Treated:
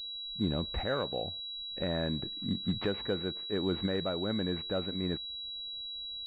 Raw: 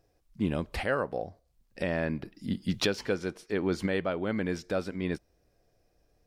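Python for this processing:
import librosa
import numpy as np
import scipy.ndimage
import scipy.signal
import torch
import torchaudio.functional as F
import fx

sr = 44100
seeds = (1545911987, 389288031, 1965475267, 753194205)

p1 = fx.level_steps(x, sr, step_db=23)
p2 = x + (p1 * librosa.db_to_amplitude(2.0))
p3 = fx.low_shelf(p2, sr, hz=140.0, db=5.0)
p4 = fx.pwm(p3, sr, carrier_hz=3900.0)
y = p4 * librosa.db_to_amplitude(-5.0)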